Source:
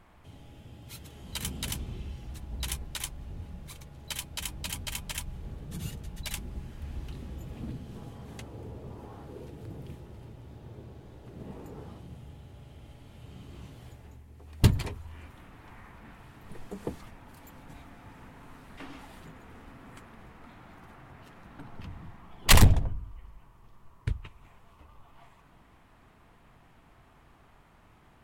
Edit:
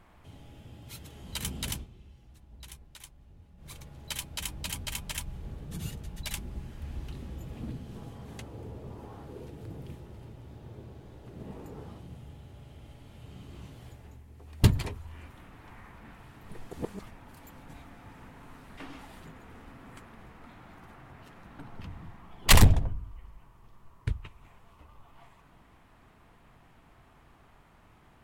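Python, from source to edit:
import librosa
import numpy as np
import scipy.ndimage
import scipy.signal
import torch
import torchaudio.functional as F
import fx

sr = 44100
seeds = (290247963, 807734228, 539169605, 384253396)

y = fx.edit(x, sr, fx.fade_down_up(start_s=1.73, length_s=1.99, db=-13.5, fade_s=0.15),
    fx.reverse_span(start_s=16.73, length_s=0.26), tone=tone)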